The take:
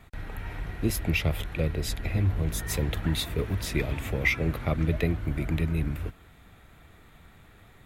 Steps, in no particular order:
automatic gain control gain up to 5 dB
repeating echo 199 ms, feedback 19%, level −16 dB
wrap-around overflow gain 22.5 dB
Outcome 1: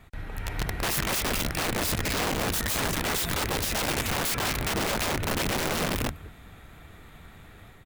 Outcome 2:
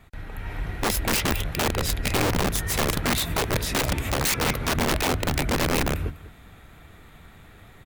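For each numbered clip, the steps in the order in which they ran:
automatic gain control, then repeating echo, then wrap-around overflow
repeating echo, then wrap-around overflow, then automatic gain control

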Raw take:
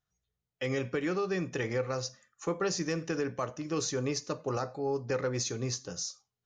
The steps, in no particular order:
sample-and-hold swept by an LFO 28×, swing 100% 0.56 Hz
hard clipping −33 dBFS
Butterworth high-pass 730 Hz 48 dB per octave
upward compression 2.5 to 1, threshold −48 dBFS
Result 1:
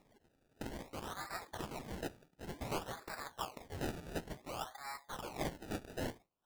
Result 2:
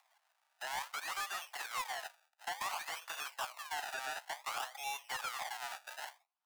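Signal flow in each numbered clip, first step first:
hard clipping, then upward compression, then Butterworth high-pass, then sample-and-hold swept by an LFO
sample-and-hold swept by an LFO, then upward compression, then Butterworth high-pass, then hard clipping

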